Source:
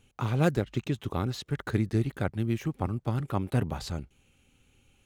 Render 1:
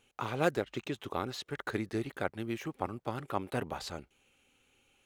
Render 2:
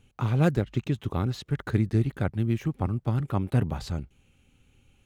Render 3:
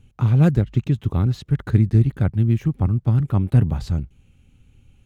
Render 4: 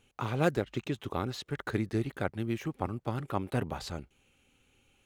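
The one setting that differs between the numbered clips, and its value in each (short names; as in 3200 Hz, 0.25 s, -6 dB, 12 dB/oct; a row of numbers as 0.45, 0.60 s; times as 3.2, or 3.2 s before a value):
tone controls, bass: -15, +4, +14, -7 dB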